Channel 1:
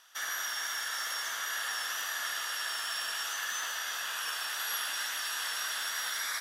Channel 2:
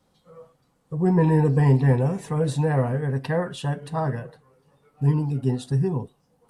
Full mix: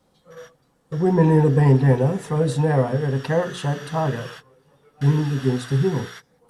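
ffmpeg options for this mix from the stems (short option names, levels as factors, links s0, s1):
-filter_complex "[0:a]aemphasis=mode=reproduction:type=bsi,volume=0.794,afade=t=in:st=2.88:d=0.77:silence=0.398107[s0];[1:a]equalizer=f=420:w=1:g=3.5,bandreject=f=60:t=h:w=6,bandreject=f=120:t=h:w=6,bandreject=f=180:t=h:w=6,bandreject=f=240:t=h:w=6,bandreject=f=300:t=h:w=6,bandreject=f=360:t=h:w=6,bandreject=f=420:t=h:w=6,bandreject=f=480:t=h:w=6,volume=1.26,asplit=2[s1][s2];[s2]apad=whole_len=282438[s3];[s0][s3]sidechaingate=range=0.0224:threshold=0.00708:ratio=16:detection=peak[s4];[s4][s1]amix=inputs=2:normalize=0"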